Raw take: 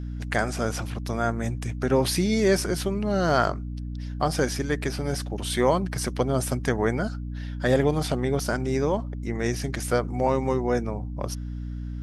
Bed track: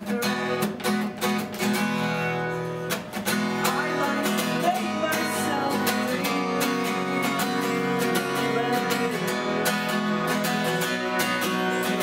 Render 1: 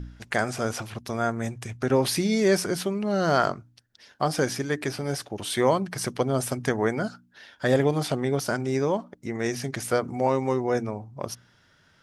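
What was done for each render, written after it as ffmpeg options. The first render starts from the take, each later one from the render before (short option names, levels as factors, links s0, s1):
-af "bandreject=f=60:t=h:w=4,bandreject=f=120:t=h:w=4,bandreject=f=180:t=h:w=4,bandreject=f=240:t=h:w=4,bandreject=f=300:t=h:w=4"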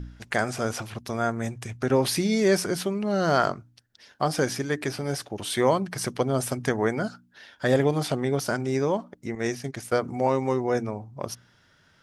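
-filter_complex "[0:a]asettb=1/sr,asplit=3[s0][s1][s2];[s0]atrim=end=9.354[s3];[s1]atrim=start=9.35:end=10.04,asetpts=PTS-STARTPTS,afade=t=in:d=0.004:c=qsin,afade=t=out:st=0.686:d=0.004:c=qsin,agate=range=0.0224:threshold=0.0355:ratio=3:release=100:detection=peak[s4];[s2]atrim=start=10.036[s5];[s3][s4]acrossfade=d=0.004:c1=hsin:c2=qsin[s6];[s6][s5]acrossfade=d=0.004:c1=qsin:c2=hsin"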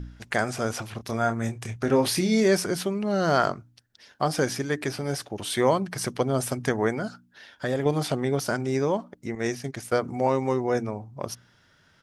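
-filter_complex "[0:a]asplit=3[s0][s1][s2];[s0]afade=t=out:st=0.98:d=0.02[s3];[s1]asplit=2[s4][s5];[s5]adelay=27,volume=0.398[s6];[s4][s6]amix=inputs=2:normalize=0,afade=t=in:st=0.98:d=0.02,afade=t=out:st=2.46:d=0.02[s7];[s2]afade=t=in:st=2.46:d=0.02[s8];[s3][s7][s8]amix=inputs=3:normalize=0,asettb=1/sr,asplit=3[s9][s10][s11];[s9]atrim=end=6.934[s12];[s10]atrim=start=6.93:end=7.86,asetpts=PTS-STARTPTS,afade=t=in:d=0.004:c=qsin,afade=t=out:st=0.926:d=0.004:c=qsin,acompressor=threshold=0.0501:ratio=2:attack=3.2:release=140:knee=1:detection=peak[s13];[s11]atrim=start=7.856[s14];[s12][s13]acrossfade=d=0.004:c1=hsin:c2=qsin[s15];[s15][s14]acrossfade=d=0.004:c1=qsin:c2=hsin"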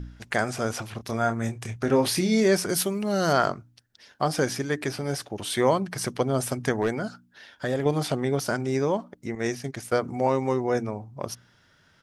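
-filter_complex "[0:a]asettb=1/sr,asplit=3[s0][s1][s2];[s0]atrim=end=2.694[s3];[s1]atrim=start=2.69:end=3.33,asetpts=PTS-STARTPTS,afade=t=in:d=0.004:c=qsin,afade=t=out:st=0.636:d=0.004:c=qsin,aemphasis=mode=production:type=50fm[s4];[s2]atrim=start=3.326[s5];[s3][s4]acrossfade=d=0.004:c1=hsin:c2=qsin[s6];[s6][s5]acrossfade=d=0.004:c1=qsin:c2=hsin,asettb=1/sr,asplit=3[s7][s8][s9];[s7]atrim=end=6.814[s10];[s8]atrim=start=6.81:end=7.81,asetpts=PTS-STARTPTS,afade=t=in:d=0.004:c=qsin,afade=t=out:st=0.996:d=0.004:c=qsin,asoftclip=type=hard:threshold=0.141[s11];[s9]atrim=start=7.806[s12];[s10][s11]acrossfade=d=0.004:c1=hsin:c2=qsin[s13];[s13][s12]acrossfade=d=0.004:c1=qsin:c2=hsin"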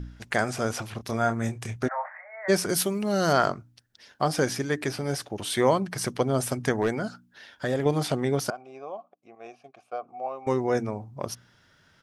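-filter_complex "[0:a]asplit=3[s0][s1][s2];[s0]afade=t=out:st=1.87:d=0.02[s3];[s1]asuperpass=centerf=1100:order=20:qfactor=0.76,afade=t=in:st=1.87:d=0.02,afade=t=out:st=2.48:d=0.02[s4];[s2]afade=t=in:st=2.48:d=0.02[s5];[s3][s4][s5]amix=inputs=3:normalize=0,asettb=1/sr,asplit=3[s6][s7][s8];[s6]atrim=end=8.504[s9];[s7]atrim=start=8.5:end=10.47,asetpts=PTS-STARTPTS,afade=t=in:d=0.004:c=qsin,afade=t=out:st=1.966:d=0.004:c=qsin,asplit=3[s10][s11][s12];[s10]bandpass=f=730:t=q:w=8,volume=1[s13];[s11]bandpass=f=1090:t=q:w=8,volume=0.501[s14];[s12]bandpass=f=2440:t=q:w=8,volume=0.355[s15];[s13][s14][s15]amix=inputs=3:normalize=0[s16];[s8]atrim=start=10.466[s17];[s9][s16]acrossfade=d=0.004:c1=hsin:c2=qsin[s18];[s18][s17]acrossfade=d=0.004:c1=qsin:c2=hsin"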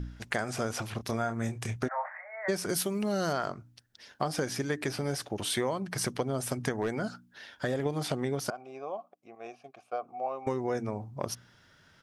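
-af "acompressor=threshold=0.0447:ratio=6"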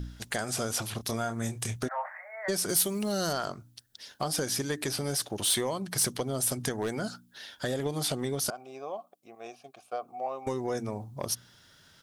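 -af "aexciter=amount=2.8:drive=3.8:freq=3200,asoftclip=type=tanh:threshold=0.119"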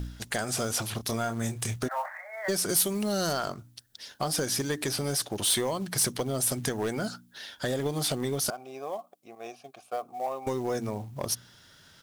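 -filter_complex "[0:a]asplit=2[s0][s1];[s1]asoftclip=type=tanh:threshold=0.0266,volume=0.355[s2];[s0][s2]amix=inputs=2:normalize=0,acrusher=bits=6:mode=log:mix=0:aa=0.000001"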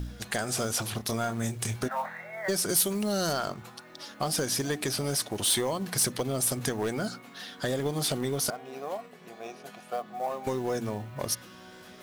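-filter_complex "[1:a]volume=0.0562[s0];[0:a][s0]amix=inputs=2:normalize=0"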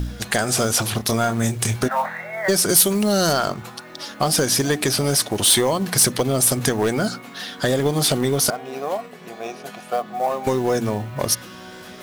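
-af "volume=3.16"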